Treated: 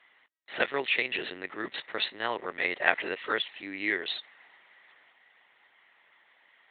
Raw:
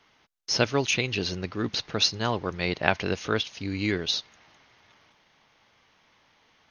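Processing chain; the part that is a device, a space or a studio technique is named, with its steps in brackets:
talking toy (linear-prediction vocoder at 8 kHz pitch kept; high-pass filter 400 Hz 12 dB per octave; parametric band 1,900 Hz +12 dB 0.32 octaves)
level −2.5 dB

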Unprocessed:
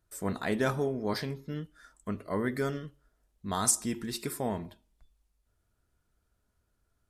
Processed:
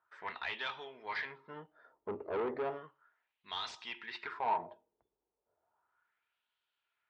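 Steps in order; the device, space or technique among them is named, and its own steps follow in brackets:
wah-wah guitar rig (LFO wah 0.34 Hz 400–3,200 Hz, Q 2.8; tube saturation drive 40 dB, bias 0.3; loudspeaker in its box 89–4,000 Hz, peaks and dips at 120 Hz −5 dB, 200 Hz −7 dB, 280 Hz −6 dB, 560 Hz −3 dB, 910 Hz +8 dB)
level +9.5 dB

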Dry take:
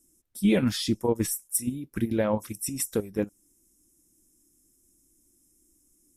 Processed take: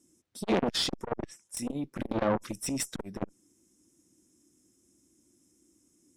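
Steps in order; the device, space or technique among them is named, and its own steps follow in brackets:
0:00.95–0:01.57: treble cut that deepens with the level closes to 1,300 Hz, closed at −19.5 dBFS
valve radio (band-pass filter 110–5,900 Hz; tube saturation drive 25 dB, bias 0.65; saturating transformer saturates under 580 Hz)
level +8 dB

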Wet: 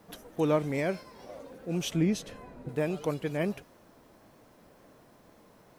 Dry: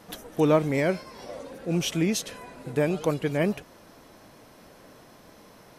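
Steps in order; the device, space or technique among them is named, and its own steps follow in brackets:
plain cassette with noise reduction switched in (one half of a high-frequency compander decoder only; tape wow and flutter; white noise bed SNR 38 dB)
0:01.92–0:02.69: spectral tilt −2 dB per octave
level −5.5 dB

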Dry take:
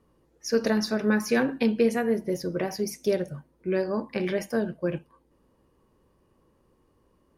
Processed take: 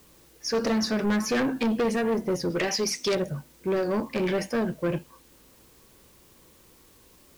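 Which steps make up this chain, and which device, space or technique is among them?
0:02.50–0:03.15: meter weighting curve D
compact cassette (soft clipping −26.5 dBFS, distortion −8 dB; low-pass filter 8,700 Hz; tape wow and flutter; white noise bed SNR 30 dB)
level +5.5 dB

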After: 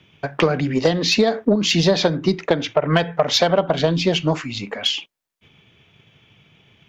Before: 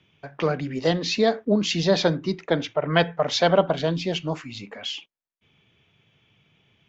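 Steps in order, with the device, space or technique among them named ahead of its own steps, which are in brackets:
drum-bus smash (transient designer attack +6 dB, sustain +2 dB; downward compressor 10 to 1, threshold −19 dBFS, peak gain reduction 11 dB; soft clipping −13 dBFS, distortion −19 dB)
level +8 dB

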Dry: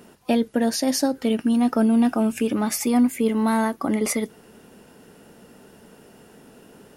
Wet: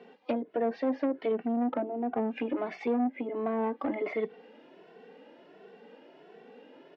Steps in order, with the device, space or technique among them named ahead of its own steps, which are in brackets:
high-pass filter 190 Hz 24 dB per octave
treble cut that deepens with the level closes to 680 Hz, closed at −16 dBFS
barber-pole flanger into a guitar amplifier (barber-pole flanger 2.2 ms +1.4 Hz; soft clipping −21 dBFS, distortion −12 dB; loudspeaker in its box 110–3,700 Hz, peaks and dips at 130 Hz −5 dB, 210 Hz −6 dB, 480 Hz +5 dB, 750 Hz +4 dB, 1,300 Hz −5 dB, 2,100 Hz +3 dB)
level −1.5 dB

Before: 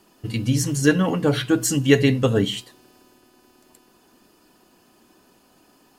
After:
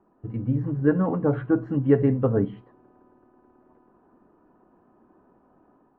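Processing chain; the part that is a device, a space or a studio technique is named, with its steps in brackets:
action camera in a waterproof case (low-pass filter 1,300 Hz 24 dB per octave; automatic gain control gain up to 4 dB; level −5 dB; AAC 48 kbit/s 24,000 Hz)

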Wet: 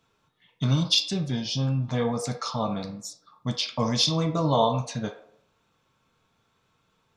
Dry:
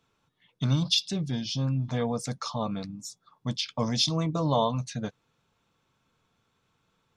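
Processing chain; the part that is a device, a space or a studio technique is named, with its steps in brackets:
filtered reverb send (on a send: high-pass filter 420 Hz 24 dB per octave + low-pass filter 6,600 Hz + convolution reverb RT60 0.65 s, pre-delay 5 ms, DRR 3.5 dB)
on the sum: level +2 dB

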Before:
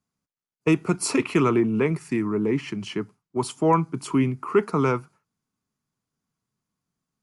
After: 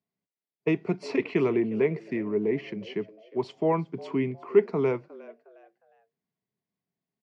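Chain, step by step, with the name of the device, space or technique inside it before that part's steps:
frequency-shifting delay pedal into a guitar cabinet (echo with shifted repeats 359 ms, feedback 33%, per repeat +110 Hz, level −20 dB; loudspeaker in its box 99–4,600 Hz, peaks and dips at 190 Hz +4 dB, 410 Hz +9 dB, 670 Hz +8 dB, 1,300 Hz −10 dB, 2,000 Hz +7 dB)
level −8 dB

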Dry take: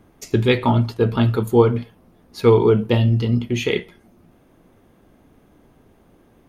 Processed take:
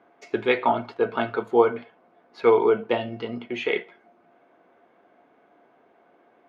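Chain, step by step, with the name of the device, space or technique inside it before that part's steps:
tin-can telephone (band-pass filter 470–2,300 Hz; hollow resonant body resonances 700/1,500/2,200 Hz, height 11 dB, ringing for 100 ms)

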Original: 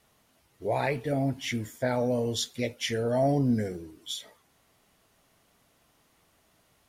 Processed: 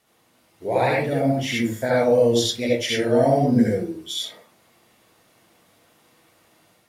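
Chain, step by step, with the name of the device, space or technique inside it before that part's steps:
far laptop microphone (convolution reverb RT60 0.35 s, pre-delay 63 ms, DRR −4 dB; high-pass filter 160 Hz 6 dB per octave; automatic gain control gain up to 3.5 dB)

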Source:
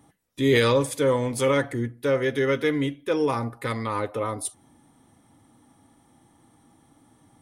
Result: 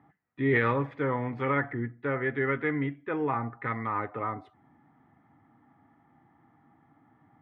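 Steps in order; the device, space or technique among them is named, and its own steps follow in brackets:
bass cabinet (loudspeaker in its box 83–2,200 Hz, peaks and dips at 150 Hz +4 dB, 530 Hz −8 dB, 750 Hz +6 dB, 1,300 Hz +5 dB, 1,900 Hz +7 dB)
level −5 dB

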